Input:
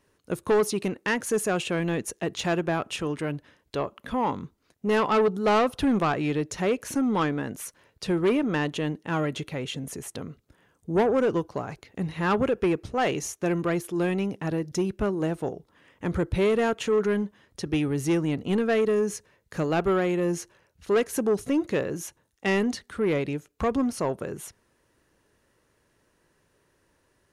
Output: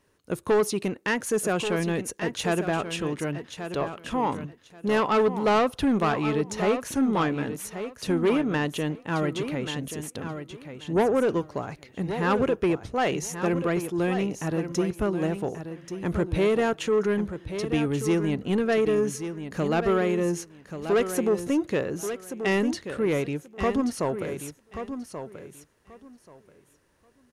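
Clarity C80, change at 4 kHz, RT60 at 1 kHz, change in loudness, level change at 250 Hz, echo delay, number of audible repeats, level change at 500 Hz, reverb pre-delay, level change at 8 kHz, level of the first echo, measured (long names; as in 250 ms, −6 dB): no reverb audible, +0.5 dB, no reverb audible, 0.0 dB, +0.5 dB, 1,133 ms, 2, +0.5 dB, no reverb audible, +0.5 dB, −9.5 dB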